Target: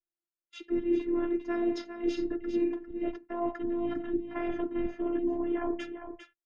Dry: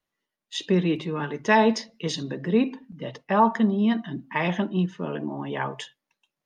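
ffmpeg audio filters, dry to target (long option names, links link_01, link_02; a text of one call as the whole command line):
ffmpeg -i in.wav -filter_complex "[0:a]asplit=2[link_01][link_02];[link_02]asetrate=33038,aresample=44100,atempo=1.33484,volume=-4dB[link_03];[link_01][link_03]amix=inputs=2:normalize=0,highpass=frequency=140:poles=1,agate=range=-21dB:threshold=-44dB:ratio=16:detection=peak,equalizer=frequency=200:width_type=o:width=0.33:gain=-8,equalizer=frequency=315:width_type=o:width=0.33:gain=8,equalizer=frequency=4000:width_type=o:width=0.33:gain=-6,areverse,acompressor=threshold=-30dB:ratio=5,areverse,aemphasis=mode=reproduction:type=riaa,afftfilt=real='hypot(re,im)*cos(PI*b)':imag='0':win_size=512:overlap=0.75,asplit=2[link_04][link_05];[link_05]aecho=0:1:401:0.355[link_06];[link_04][link_06]amix=inputs=2:normalize=0" out.wav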